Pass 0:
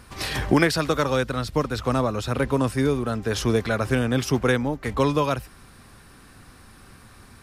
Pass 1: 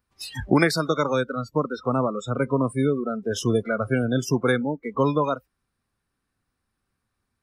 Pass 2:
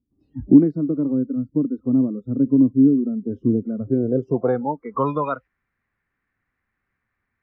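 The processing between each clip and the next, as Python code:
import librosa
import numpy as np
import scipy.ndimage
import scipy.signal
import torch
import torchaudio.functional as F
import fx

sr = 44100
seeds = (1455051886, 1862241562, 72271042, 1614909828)

y1 = fx.noise_reduce_blind(x, sr, reduce_db=30)
y2 = fx.filter_sweep_lowpass(y1, sr, from_hz=280.0, to_hz=2000.0, start_s=3.82, end_s=5.22, q=4.9)
y2 = F.gain(torch.from_numpy(y2), -2.0).numpy()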